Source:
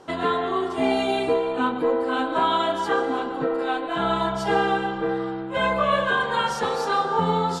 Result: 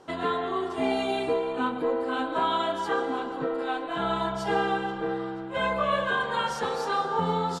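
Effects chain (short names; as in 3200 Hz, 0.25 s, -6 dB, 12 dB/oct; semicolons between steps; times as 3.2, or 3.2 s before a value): feedback echo 0.484 s, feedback 42%, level -20.5 dB; gain -4.5 dB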